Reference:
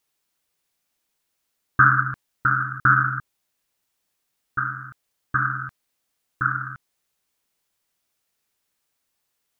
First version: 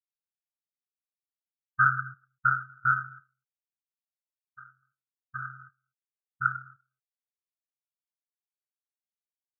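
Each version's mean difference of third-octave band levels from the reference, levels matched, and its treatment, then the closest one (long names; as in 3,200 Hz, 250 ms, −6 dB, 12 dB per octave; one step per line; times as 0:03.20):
6.5 dB: speech leveller within 4 dB 0.5 s
single-tap delay 244 ms −14 dB
every bin expanded away from the loudest bin 2.5 to 1
level −3.5 dB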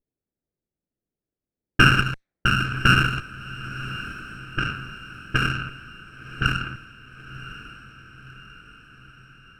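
13.5 dB: lower of the sound and its delayed copy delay 0.49 ms
low-pass that shuts in the quiet parts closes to 450 Hz, open at −20 dBFS
on a send: feedback delay with all-pass diffusion 1,060 ms, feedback 56%, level −14 dB
on the sum: level +2 dB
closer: first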